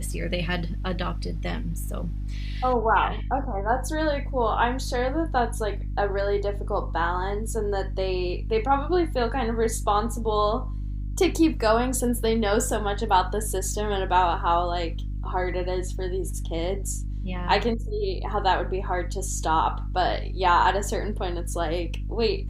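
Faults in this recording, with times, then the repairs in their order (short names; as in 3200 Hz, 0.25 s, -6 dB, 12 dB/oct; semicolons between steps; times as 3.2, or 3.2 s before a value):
hum 50 Hz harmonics 6 -30 dBFS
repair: de-hum 50 Hz, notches 6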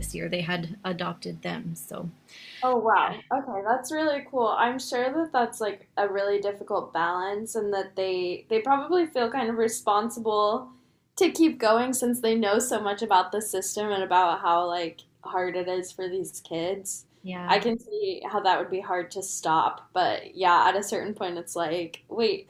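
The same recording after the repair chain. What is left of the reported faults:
none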